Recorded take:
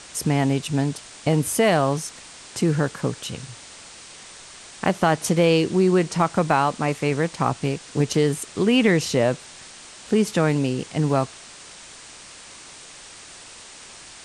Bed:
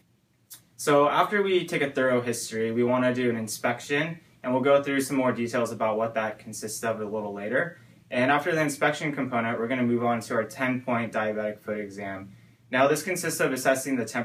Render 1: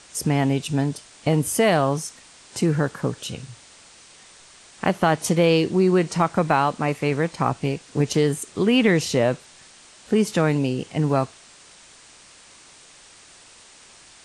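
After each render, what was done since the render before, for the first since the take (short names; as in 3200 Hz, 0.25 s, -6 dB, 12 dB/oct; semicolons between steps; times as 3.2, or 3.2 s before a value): noise print and reduce 6 dB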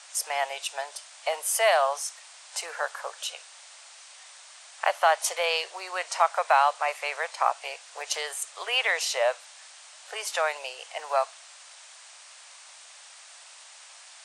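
steep high-pass 590 Hz 48 dB/oct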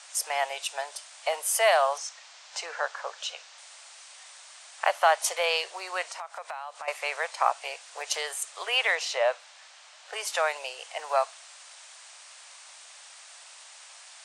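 1.98–3.58 LPF 6800 Hz 24 dB/oct; 6.04–6.88 compressor 5:1, threshold -36 dBFS; 8.95–10.13 air absorption 73 m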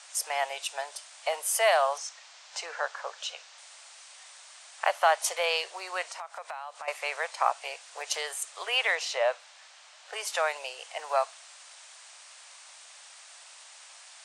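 gain -1.5 dB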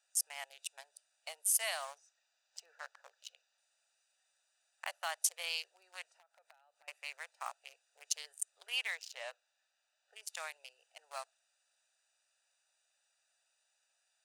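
Wiener smoothing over 41 samples; differentiator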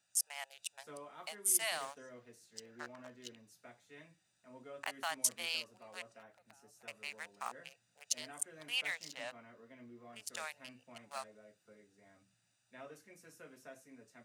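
add bed -30.5 dB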